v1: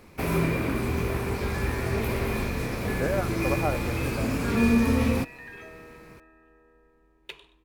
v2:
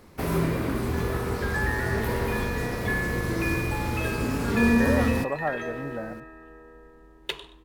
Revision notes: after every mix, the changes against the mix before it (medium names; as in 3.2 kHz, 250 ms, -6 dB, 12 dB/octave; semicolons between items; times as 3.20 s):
speech: entry +1.80 s; second sound +11.0 dB; master: add peaking EQ 2.4 kHz -10 dB 0.21 oct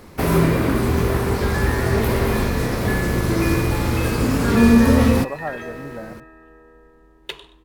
first sound +8.5 dB